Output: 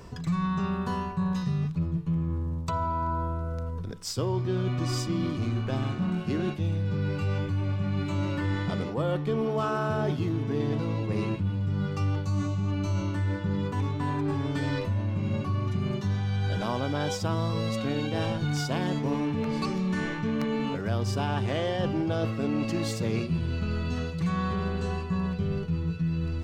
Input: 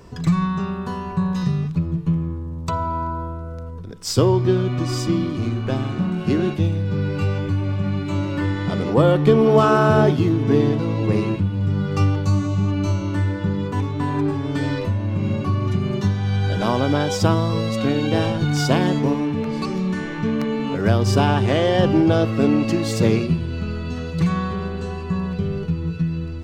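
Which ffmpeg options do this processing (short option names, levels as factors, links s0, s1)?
-af "equalizer=f=340:w=1.2:g=-3,areverse,acompressor=threshold=0.0562:ratio=6,areverse"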